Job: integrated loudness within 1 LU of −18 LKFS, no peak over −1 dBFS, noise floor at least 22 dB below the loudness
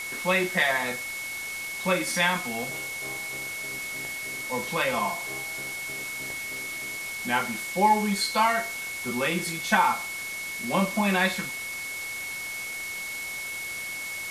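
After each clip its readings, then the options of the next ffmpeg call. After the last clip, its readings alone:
interfering tone 2,200 Hz; level of the tone −33 dBFS; background noise floor −35 dBFS; target noise floor −50 dBFS; integrated loudness −27.5 LKFS; sample peak −8.0 dBFS; target loudness −18.0 LKFS
→ -af "bandreject=frequency=2200:width=30"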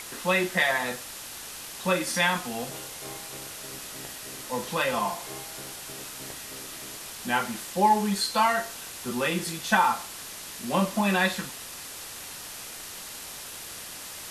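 interfering tone none found; background noise floor −41 dBFS; target noise floor −51 dBFS
→ -af "afftdn=noise_reduction=10:noise_floor=-41"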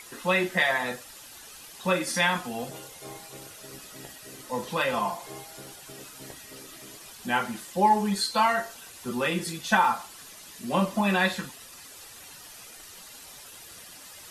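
background noise floor −47 dBFS; target noise floor −49 dBFS
→ -af "afftdn=noise_reduction=6:noise_floor=-47"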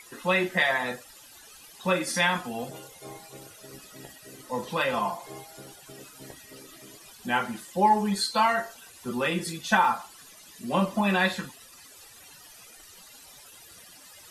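background noise floor −51 dBFS; integrated loudness −26.5 LKFS; sample peak −8.0 dBFS; target loudness −18.0 LKFS
→ -af "volume=8.5dB,alimiter=limit=-1dB:level=0:latency=1"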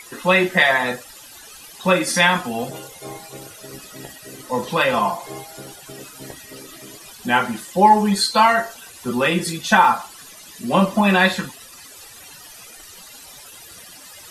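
integrated loudness −18.0 LKFS; sample peak −1.0 dBFS; background noise floor −42 dBFS

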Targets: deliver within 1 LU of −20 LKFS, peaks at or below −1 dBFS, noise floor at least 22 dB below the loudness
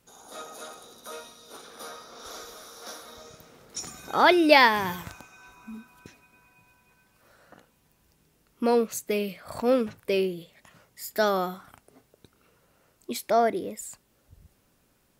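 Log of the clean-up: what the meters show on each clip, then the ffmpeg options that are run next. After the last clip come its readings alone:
integrated loudness −24.5 LKFS; sample peak −3.5 dBFS; target loudness −20.0 LKFS
→ -af "volume=4.5dB,alimiter=limit=-1dB:level=0:latency=1"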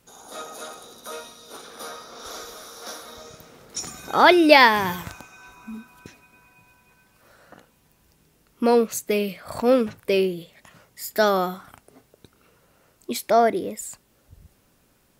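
integrated loudness −20.5 LKFS; sample peak −1.0 dBFS; background noise floor −62 dBFS

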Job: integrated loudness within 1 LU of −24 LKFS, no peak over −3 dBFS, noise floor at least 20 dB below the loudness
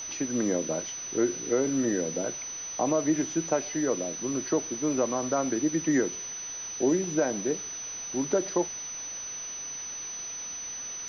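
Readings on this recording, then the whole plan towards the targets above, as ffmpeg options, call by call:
interfering tone 6,000 Hz; level of the tone −35 dBFS; background noise floor −38 dBFS; target noise floor −49 dBFS; integrated loudness −29.0 LKFS; sample peak −13.0 dBFS; target loudness −24.0 LKFS
→ -af "bandreject=frequency=6000:width=30"
-af "afftdn=noise_reduction=11:noise_floor=-38"
-af "volume=5dB"

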